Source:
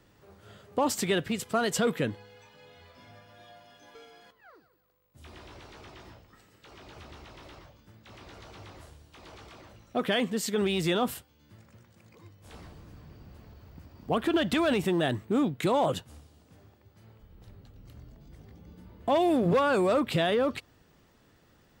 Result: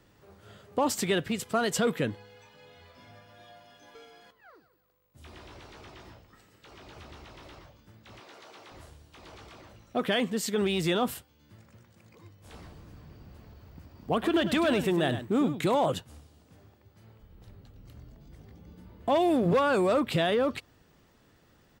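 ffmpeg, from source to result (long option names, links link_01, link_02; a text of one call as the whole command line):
ffmpeg -i in.wav -filter_complex "[0:a]asettb=1/sr,asplit=3[link_01][link_02][link_03];[link_01]atrim=end=8.204[link_04];[link_02]atrim=start=8.2:end=8.72,asetpts=PTS-STARTPTS,afade=type=in:duration=0.004:curve=qsin,afade=type=out:start_time=0.516:duration=0.004:curve=qsin,highpass=340[link_05];[link_03]atrim=start=8.716[link_06];[link_04][link_05]acrossfade=duration=0.004:curve1=hsin:curve2=qsin[link_07];[link_07][link_06]acrossfade=duration=0.004:curve1=qsin:curve2=hsin,asplit=3[link_08][link_09][link_10];[link_08]afade=type=out:start_time=14.22:duration=0.02[link_11];[link_09]aecho=1:1:101:0.299,afade=type=in:start_time=14.22:duration=0.02,afade=type=out:start_time=15.74:duration=0.02[link_12];[link_10]afade=type=in:start_time=15.74:duration=0.02[link_13];[link_11][link_12][link_13]amix=inputs=3:normalize=0" out.wav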